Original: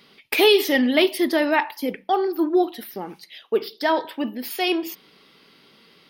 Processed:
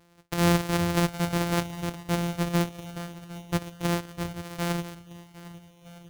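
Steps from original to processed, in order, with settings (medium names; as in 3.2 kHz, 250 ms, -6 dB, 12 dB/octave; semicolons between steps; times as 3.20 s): sorted samples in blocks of 256 samples; on a send: shuffle delay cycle 1260 ms, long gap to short 1.5:1, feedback 38%, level -18 dB; on the sum: trim -6.5 dB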